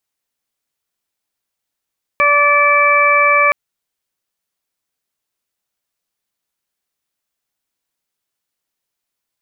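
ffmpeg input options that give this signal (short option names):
-f lavfi -i "aevalsrc='0.141*sin(2*PI*580*t)+0.237*sin(2*PI*1160*t)+0.112*sin(2*PI*1740*t)+0.237*sin(2*PI*2320*t)':d=1.32:s=44100"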